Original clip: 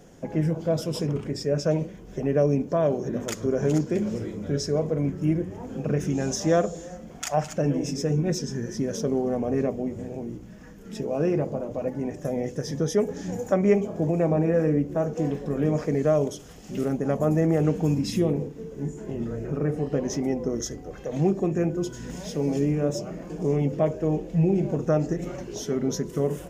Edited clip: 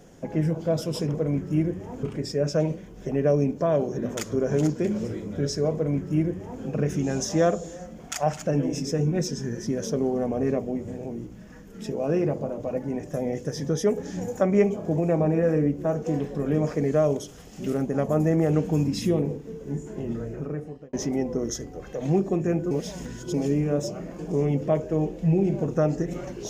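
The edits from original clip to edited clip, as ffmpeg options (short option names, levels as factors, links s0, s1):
-filter_complex "[0:a]asplit=6[s0][s1][s2][s3][s4][s5];[s0]atrim=end=1.142[s6];[s1]atrim=start=4.848:end=5.742[s7];[s2]atrim=start=1.138:end=20.04,asetpts=PTS-STARTPTS,afade=t=out:st=18.122:d=0.78[s8];[s3]atrim=start=20.04:end=21.822,asetpts=PTS-STARTPTS,afade=t=in:d=0.004:c=hsin[s9];[s4]atrim=start=21.818:end=22.452,asetpts=PTS-STARTPTS,areverse[s10];[s5]atrim=start=22.448[s11];[s6][s7]acrossfade=d=0.004:c1=hsin:c2=hsin[s12];[s8][s9]concat=n=2:v=0:a=1[s13];[s12][s13]acrossfade=d=0.004:c1=hsin:c2=hsin[s14];[s14][s10]acrossfade=d=0.004:c1=hsin:c2=hsin[s15];[s15][s11]acrossfade=d=0.004:c1=hsin:c2=hsin"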